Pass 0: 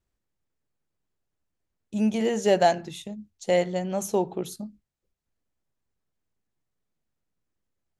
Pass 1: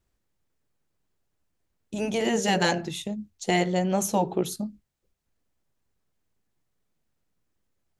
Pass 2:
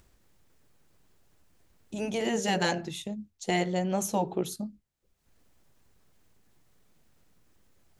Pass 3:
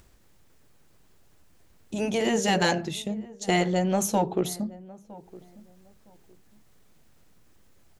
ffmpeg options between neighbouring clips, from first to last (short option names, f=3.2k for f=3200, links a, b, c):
-af "afftfilt=real='re*lt(hypot(re,im),0.501)':imag='im*lt(hypot(re,im),0.501)':win_size=1024:overlap=0.75,volume=5dB"
-af "acompressor=mode=upward:threshold=-44dB:ratio=2.5,volume=-4dB"
-filter_complex "[0:a]asplit=2[a][b];[b]asoftclip=type=tanh:threshold=-24dB,volume=-6dB[c];[a][c]amix=inputs=2:normalize=0,asplit=2[d][e];[e]adelay=961,lowpass=f=1k:p=1,volume=-19.5dB,asplit=2[f][g];[g]adelay=961,lowpass=f=1k:p=1,volume=0.25[h];[d][f][h]amix=inputs=3:normalize=0,volume=1.5dB"